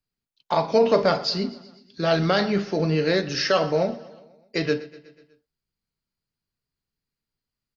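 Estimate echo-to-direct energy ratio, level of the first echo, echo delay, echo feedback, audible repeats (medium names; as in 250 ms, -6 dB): -17.0 dB, -19.0 dB, 123 ms, 59%, 4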